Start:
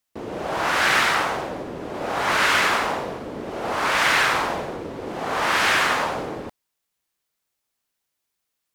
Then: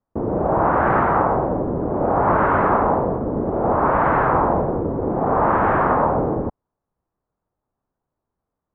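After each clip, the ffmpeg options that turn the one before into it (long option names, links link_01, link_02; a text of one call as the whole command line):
ffmpeg -i in.wav -af "lowpass=frequency=1100:width=0.5412,lowpass=frequency=1100:width=1.3066,lowshelf=frequency=190:gain=9,volume=7.5dB" out.wav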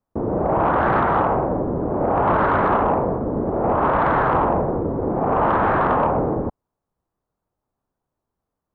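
ffmpeg -i in.wav -af "asoftclip=type=tanh:threshold=-7.5dB" out.wav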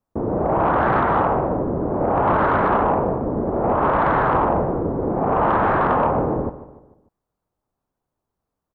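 ffmpeg -i in.wav -filter_complex "[0:a]asplit=2[link_01][link_02];[link_02]adelay=148,lowpass=frequency=3600:poles=1,volume=-15dB,asplit=2[link_03][link_04];[link_04]adelay=148,lowpass=frequency=3600:poles=1,volume=0.47,asplit=2[link_05][link_06];[link_06]adelay=148,lowpass=frequency=3600:poles=1,volume=0.47,asplit=2[link_07][link_08];[link_08]adelay=148,lowpass=frequency=3600:poles=1,volume=0.47[link_09];[link_01][link_03][link_05][link_07][link_09]amix=inputs=5:normalize=0" out.wav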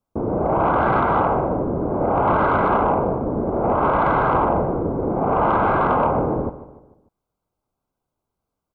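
ffmpeg -i in.wav -af "asuperstop=centerf=1800:order=12:qfactor=6" out.wav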